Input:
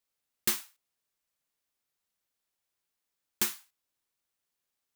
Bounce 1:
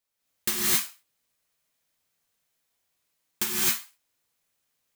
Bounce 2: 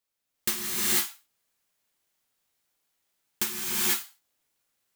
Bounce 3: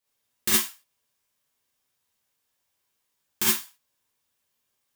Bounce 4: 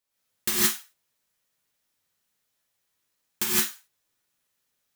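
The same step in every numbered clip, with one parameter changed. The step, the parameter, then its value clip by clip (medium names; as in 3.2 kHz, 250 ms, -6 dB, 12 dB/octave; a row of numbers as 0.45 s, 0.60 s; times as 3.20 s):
gated-style reverb, gate: 290 ms, 520 ms, 90 ms, 190 ms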